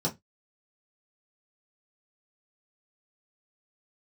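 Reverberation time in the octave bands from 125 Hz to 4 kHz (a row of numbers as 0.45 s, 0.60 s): 0.25 s, 0.20 s, 0.15 s, 0.15 s, 0.15 s, 0.15 s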